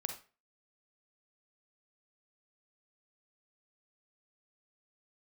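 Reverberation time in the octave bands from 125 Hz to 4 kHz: 0.35, 0.35, 0.35, 0.35, 0.35, 0.30 s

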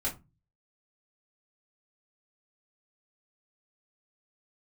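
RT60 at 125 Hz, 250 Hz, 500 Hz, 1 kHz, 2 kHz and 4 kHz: 0.60, 0.40, 0.25, 0.25, 0.20, 0.15 s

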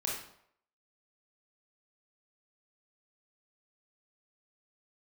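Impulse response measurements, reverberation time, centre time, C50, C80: 0.70 s, 46 ms, 2.0 dB, 6.5 dB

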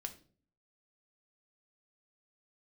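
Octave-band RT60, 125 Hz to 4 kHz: 0.75, 0.70, 0.55, 0.35, 0.35, 0.35 s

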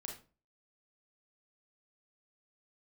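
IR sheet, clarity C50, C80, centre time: 5.5 dB, 12.5 dB, 27 ms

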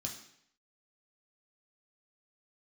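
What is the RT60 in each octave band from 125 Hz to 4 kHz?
0.70, 0.70, 0.70, 0.70, 0.70, 0.70 s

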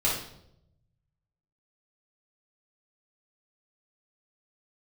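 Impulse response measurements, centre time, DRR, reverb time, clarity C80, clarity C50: 42 ms, -7.5 dB, 0.75 s, 7.5 dB, 3.0 dB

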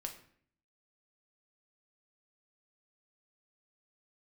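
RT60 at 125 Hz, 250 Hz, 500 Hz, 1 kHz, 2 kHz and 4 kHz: 0.80, 0.75, 0.60, 0.55, 0.55, 0.45 s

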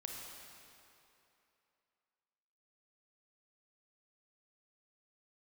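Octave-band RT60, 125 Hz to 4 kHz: 2.4, 2.6, 2.9, 2.9, 2.7, 2.3 s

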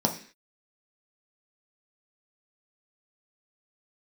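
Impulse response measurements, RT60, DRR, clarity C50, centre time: 0.45 s, 1.5 dB, 11.0 dB, 14 ms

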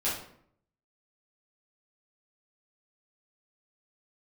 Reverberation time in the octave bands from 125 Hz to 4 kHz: 0.85, 0.75, 0.65, 0.60, 0.55, 0.45 s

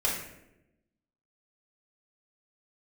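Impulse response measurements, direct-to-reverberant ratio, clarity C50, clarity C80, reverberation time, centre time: -5.5 dB, 3.5 dB, 6.5 dB, 0.90 s, 45 ms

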